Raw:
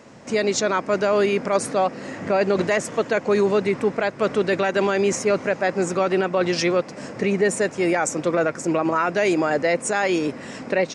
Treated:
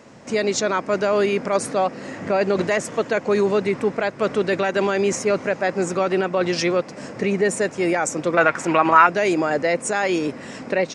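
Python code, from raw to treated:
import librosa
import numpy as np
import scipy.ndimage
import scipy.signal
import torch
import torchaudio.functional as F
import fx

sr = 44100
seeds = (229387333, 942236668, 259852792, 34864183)

y = fx.band_shelf(x, sr, hz=1700.0, db=10.0, octaves=2.6, at=(8.37, 9.07))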